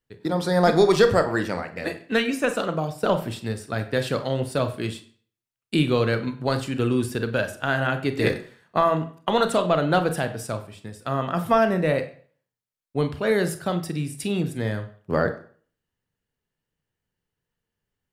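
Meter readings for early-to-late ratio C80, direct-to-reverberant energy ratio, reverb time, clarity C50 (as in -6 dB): 15.5 dB, 8.0 dB, 0.45 s, 12.5 dB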